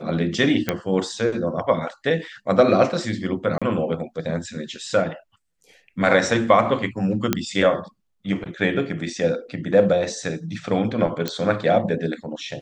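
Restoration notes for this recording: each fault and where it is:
0:00.69: click −6 dBFS
0:03.58–0:03.62: drop-out 36 ms
0:07.33: click −4 dBFS
0:11.28: click −9 dBFS

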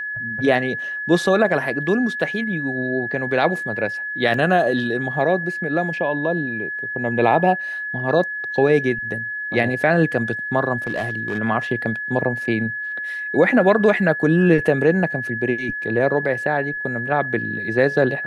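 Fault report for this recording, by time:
whistle 1,700 Hz −25 dBFS
0:04.34: drop-out 2.1 ms
0:10.87–0:11.39: clipping −19 dBFS

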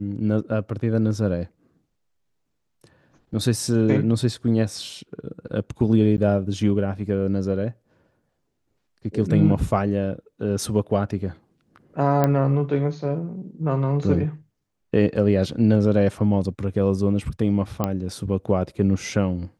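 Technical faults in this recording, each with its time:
0:06.17–0:06.18: drop-out 9.7 ms
0:12.24: click −8 dBFS
0:17.84: click −10 dBFS

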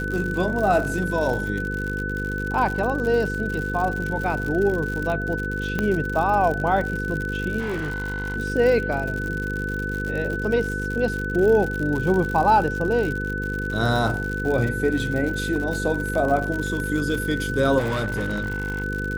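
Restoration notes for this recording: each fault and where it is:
mains buzz 50 Hz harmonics 10 −29 dBFS
surface crackle 97 per second −27 dBFS
whistle 1,500 Hz −28 dBFS
0:05.79: click −11 dBFS
0:07.59–0:08.37: clipping −23.5 dBFS
0:17.78–0:18.84: clipping −21 dBFS

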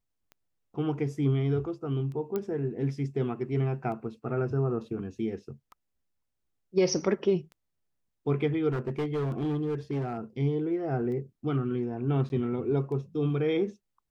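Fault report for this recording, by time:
scratch tick 33 1/3 rpm −33 dBFS
0:02.36: click −19 dBFS
0:08.70–0:10.18: clipping −26 dBFS
0:12.29–0:12.30: drop-out

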